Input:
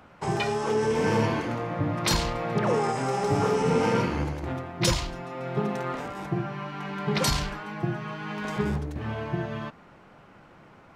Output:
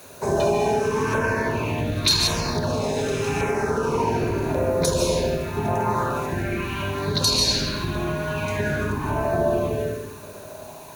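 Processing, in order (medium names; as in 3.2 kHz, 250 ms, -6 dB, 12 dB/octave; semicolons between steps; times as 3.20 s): octave divider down 1 oct, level +2 dB; high-pass 110 Hz 6 dB/octave; treble shelf 7.3 kHz +12 dB; filtered feedback delay 71 ms, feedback 64%, low-pass 1.6 kHz, level -3 dB; reverberation RT60 1.3 s, pre-delay 105 ms, DRR -0.5 dB; LFO notch saw down 0.88 Hz 500–5100 Hz; word length cut 8-bit, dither triangular; rippled EQ curve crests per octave 1.5, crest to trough 8 dB; compression, threshold -21 dBFS, peak gain reduction 9.5 dB; sweeping bell 0.2 Hz 480–4600 Hz +12 dB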